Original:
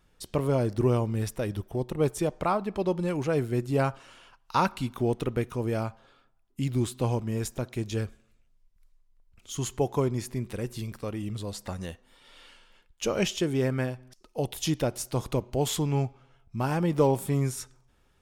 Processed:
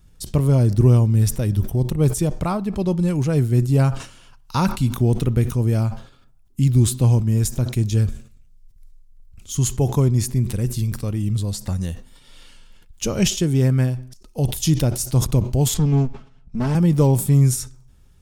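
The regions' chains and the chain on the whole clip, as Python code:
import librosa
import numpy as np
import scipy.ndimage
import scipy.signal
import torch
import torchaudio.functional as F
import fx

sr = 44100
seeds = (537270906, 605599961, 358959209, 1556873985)

y = fx.chain(x, sr, fx.lower_of_two(delay_ms=4.6),
    fx.lowpass(hz=8800.0, slope=12),
    fx.high_shelf(hz=5600.0, db=-10.0), at=(15.74, 16.75))
y = fx.bass_treble(y, sr, bass_db=15, treble_db=10)
y = fx.sustainer(y, sr, db_per_s=130.0)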